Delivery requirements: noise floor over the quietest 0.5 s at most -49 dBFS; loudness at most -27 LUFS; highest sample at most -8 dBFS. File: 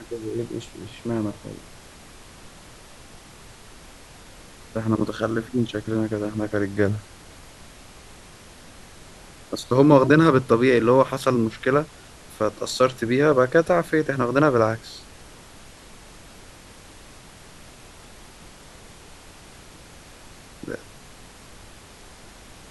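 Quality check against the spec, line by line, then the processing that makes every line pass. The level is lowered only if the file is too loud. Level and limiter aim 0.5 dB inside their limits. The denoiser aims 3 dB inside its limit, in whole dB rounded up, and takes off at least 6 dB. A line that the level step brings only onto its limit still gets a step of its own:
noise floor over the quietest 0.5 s -45 dBFS: fail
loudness -21.5 LUFS: fail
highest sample -3.5 dBFS: fail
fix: trim -6 dB

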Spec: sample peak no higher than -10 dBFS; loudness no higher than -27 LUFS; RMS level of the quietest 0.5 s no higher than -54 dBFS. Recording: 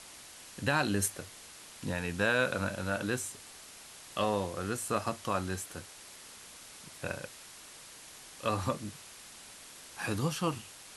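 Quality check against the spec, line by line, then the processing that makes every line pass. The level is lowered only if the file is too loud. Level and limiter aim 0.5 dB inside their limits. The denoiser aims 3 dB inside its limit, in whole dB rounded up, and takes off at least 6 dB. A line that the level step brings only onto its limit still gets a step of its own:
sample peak -14.0 dBFS: pass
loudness -33.5 LUFS: pass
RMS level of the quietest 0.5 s -51 dBFS: fail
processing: noise reduction 6 dB, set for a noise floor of -51 dBFS

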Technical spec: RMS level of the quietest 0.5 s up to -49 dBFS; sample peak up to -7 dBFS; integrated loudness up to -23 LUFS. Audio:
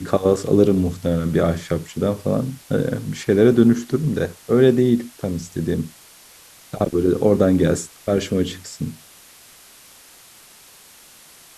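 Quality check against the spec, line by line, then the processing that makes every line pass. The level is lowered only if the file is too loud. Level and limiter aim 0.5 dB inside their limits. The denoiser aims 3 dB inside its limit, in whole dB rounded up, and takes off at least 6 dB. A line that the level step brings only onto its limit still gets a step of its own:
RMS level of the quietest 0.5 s -47 dBFS: fail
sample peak -2.5 dBFS: fail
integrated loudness -19.5 LUFS: fail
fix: trim -4 dB; peak limiter -7.5 dBFS

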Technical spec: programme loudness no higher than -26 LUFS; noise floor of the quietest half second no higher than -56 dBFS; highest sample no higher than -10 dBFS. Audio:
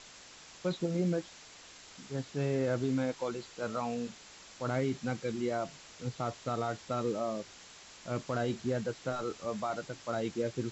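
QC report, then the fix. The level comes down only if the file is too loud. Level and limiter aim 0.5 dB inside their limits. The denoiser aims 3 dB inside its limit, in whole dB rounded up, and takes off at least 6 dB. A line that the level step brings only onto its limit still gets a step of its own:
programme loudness -35.5 LUFS: pass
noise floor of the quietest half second -53 dBFS: fail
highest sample -20.5 dBFS: pass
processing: noise reduction 6 dB, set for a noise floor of -53 dBFS

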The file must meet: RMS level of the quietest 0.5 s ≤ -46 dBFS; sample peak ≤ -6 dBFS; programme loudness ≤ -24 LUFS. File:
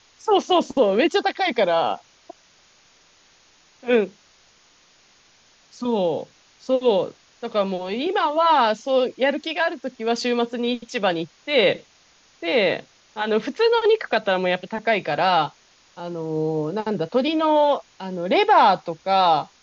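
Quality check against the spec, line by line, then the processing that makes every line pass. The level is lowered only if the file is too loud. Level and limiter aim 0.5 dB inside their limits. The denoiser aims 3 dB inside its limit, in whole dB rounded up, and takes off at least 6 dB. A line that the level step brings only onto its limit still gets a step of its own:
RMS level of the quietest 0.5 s -56 dBFS: pass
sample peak -5.5 dBFS: fail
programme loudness -21.5 LUFS: fail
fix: trim -3 dB

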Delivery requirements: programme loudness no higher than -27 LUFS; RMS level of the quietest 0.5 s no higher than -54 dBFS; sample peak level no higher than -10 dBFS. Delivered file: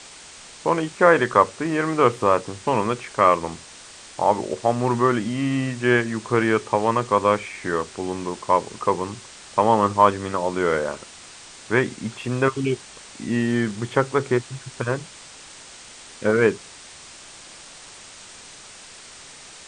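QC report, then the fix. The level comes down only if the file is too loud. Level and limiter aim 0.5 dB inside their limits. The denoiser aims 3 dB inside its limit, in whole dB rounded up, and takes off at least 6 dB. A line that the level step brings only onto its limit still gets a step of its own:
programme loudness -22.0 LUFS: fail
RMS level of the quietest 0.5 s -43 dBFS: fail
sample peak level -2.5 dBFS: fail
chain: noise reduction 9 dB, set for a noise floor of -43 dBFS; trim -5.5 dB; peak limiter -10.5 dBFS

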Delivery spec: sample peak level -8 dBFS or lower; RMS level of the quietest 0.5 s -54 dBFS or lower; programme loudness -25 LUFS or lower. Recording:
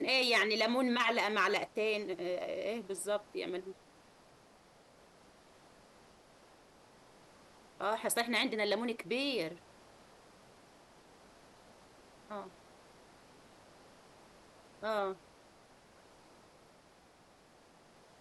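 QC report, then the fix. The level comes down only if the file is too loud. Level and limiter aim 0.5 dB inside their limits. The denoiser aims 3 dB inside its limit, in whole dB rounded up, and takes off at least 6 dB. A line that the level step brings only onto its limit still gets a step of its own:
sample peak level -19.0 dBFS: pass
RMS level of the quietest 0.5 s -63 dBFS: pass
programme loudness -34.0 LUFS: pass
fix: none needed

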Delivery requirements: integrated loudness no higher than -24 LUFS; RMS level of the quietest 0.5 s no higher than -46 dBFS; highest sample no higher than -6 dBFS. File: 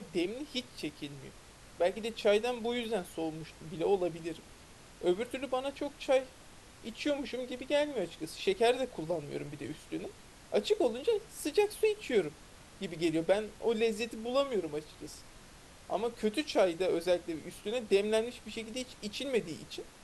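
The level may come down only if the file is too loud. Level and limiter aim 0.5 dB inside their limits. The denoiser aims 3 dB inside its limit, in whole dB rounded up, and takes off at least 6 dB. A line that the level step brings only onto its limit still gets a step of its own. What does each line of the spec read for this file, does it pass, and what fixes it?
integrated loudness -33.5 LUFS: pass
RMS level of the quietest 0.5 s -54 dBFS: pass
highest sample -16.0 dBFS: pass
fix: none needed

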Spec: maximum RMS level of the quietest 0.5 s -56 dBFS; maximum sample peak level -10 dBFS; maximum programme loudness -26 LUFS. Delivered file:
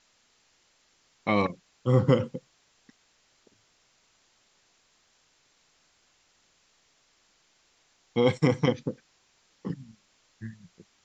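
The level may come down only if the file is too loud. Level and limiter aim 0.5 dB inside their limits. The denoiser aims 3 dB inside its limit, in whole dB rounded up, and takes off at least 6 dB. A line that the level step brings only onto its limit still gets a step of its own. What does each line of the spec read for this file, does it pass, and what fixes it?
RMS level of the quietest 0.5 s -67 dBFS: pass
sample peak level -8.5 dBFS: fail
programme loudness -27.5 LUFS: pass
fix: peak limiter -10.5 dBFS

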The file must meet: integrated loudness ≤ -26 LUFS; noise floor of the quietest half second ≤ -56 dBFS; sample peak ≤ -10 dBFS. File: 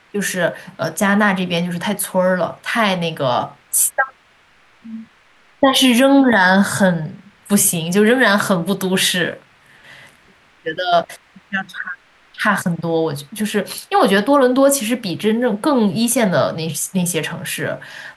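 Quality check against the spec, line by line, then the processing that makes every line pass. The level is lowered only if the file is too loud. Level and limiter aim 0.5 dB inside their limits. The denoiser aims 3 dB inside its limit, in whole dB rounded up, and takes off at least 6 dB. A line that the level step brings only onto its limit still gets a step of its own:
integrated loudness -16.5 LUFS: fail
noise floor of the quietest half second -53 dBFS: fail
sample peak -2.5 dBFS: fail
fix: trim -10 dB

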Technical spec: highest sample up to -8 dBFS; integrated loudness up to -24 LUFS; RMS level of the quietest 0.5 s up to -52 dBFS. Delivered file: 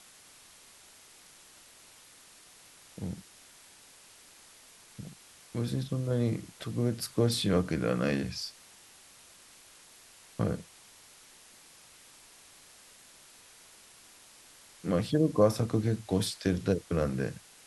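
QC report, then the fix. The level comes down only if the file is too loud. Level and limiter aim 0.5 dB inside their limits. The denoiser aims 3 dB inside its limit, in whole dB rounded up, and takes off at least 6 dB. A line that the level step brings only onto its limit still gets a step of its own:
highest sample -11.0 dBFS: pass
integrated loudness -31.0 LUFS: pass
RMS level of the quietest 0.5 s -56 dBFS: pass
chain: none needed

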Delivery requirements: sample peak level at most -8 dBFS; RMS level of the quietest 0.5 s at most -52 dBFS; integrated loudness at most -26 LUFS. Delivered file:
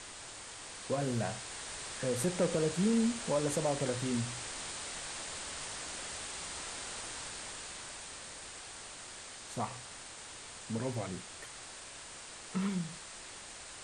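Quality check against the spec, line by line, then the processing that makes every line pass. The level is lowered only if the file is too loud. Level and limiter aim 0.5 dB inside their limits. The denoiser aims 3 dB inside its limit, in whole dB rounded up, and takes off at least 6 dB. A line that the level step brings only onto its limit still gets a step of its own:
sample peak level -19.0 dBFS: pass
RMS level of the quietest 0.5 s -48 dBFS: fail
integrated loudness -37.5 LUFS: pass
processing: noise reduction 7 dB, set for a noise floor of -48 dBFS

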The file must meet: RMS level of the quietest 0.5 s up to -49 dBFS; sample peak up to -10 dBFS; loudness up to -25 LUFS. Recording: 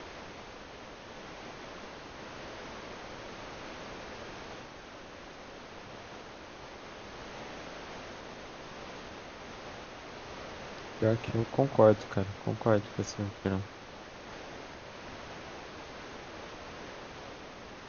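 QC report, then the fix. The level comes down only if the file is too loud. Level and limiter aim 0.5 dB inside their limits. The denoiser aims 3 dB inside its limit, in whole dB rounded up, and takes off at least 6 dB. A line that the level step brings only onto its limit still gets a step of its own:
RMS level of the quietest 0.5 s -48 dBFS: fail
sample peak -8.0 dBFS: fail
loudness -37.0 LUFS: pass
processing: noise reduction 6 dB, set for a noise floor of -48 dBFS; peak limiter -10.5 dBFS

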